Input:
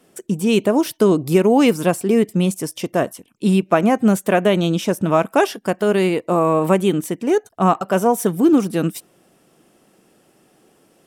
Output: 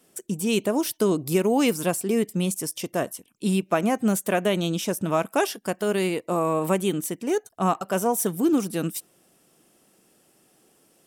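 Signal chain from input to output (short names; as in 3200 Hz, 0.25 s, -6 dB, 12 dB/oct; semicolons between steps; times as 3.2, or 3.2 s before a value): high shelf 4200 Hz +10 dB; gain -7.5 dB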